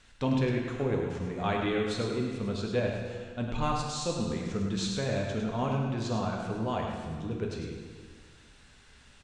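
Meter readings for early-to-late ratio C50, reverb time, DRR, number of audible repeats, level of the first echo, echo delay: 1.5 dB, 1.7 s, -1.0 dB, 1, -6.0 dB, 0.103 s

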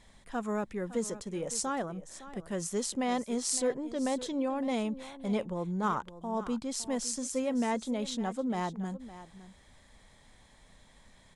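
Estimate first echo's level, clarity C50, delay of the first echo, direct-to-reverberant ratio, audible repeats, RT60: -15.0 dB, none, 0.56 s, none, 1, none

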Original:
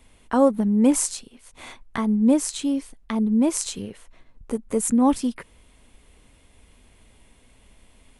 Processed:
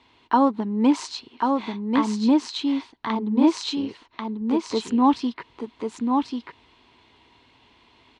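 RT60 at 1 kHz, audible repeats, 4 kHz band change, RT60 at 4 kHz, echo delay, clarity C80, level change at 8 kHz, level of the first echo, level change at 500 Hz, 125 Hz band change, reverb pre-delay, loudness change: none, 1, +5.0 dB, none, 1.09 s, none, -13.5 dB, -4.0 dB, -3.0 dB, n/a, none, -1.5 dB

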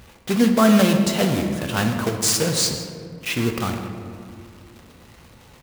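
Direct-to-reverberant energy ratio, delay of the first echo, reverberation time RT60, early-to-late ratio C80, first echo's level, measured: 3.5 dB, 0.158 s, 2.3 s, 7.0 dB, -16.0 dB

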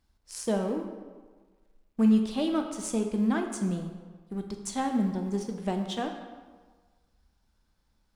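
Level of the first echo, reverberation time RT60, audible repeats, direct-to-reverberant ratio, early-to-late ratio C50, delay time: none, 1.5 s, none, 4.0 dB, 6.5 dB, none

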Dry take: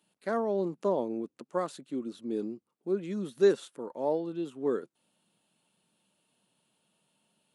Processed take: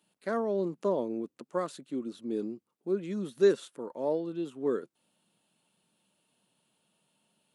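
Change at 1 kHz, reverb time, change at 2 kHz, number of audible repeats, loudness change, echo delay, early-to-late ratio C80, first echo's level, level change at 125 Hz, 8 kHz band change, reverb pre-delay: -2.0 dB, none, 0.0 dB, none, -0.5 dB, none, none, none, 0.0 dB, n/a, none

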